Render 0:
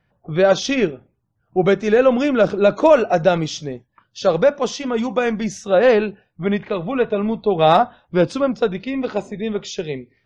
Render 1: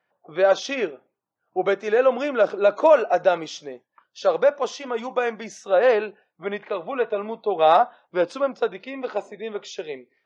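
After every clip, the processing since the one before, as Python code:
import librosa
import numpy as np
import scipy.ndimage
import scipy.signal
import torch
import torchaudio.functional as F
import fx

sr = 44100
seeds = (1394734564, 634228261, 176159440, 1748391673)

y = scipy.signal.sosfilt(scipy.signal.butter(2, 530.0, 'highpass', fs=sr, output='sos'), x)
y = fx.high_shelf(y, sr, hz=2100.0, db=-8.5)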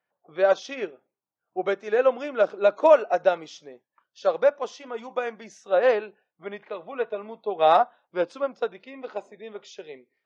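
y = fx.upward_expand(x, sr, threshold_db=-27.0, expansion=1.5)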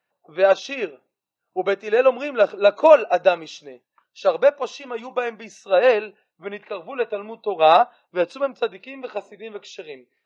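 y = fx.small_body(x, sr, hz=(2700.0, 3900.0), ring_ms=25, db=13)
y = y * 10.0 ** (4.0 / 20.0)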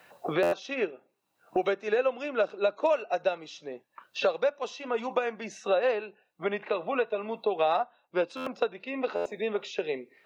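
y = fx.buffer_glitch(x, sr, at_s=(0.42, 8.36, 9.15), block=512, repeats=8)
y = fx.band_squash(y, sr, depth_pct=100)
y = y * 10.0 ** (-8.5 / 20.0)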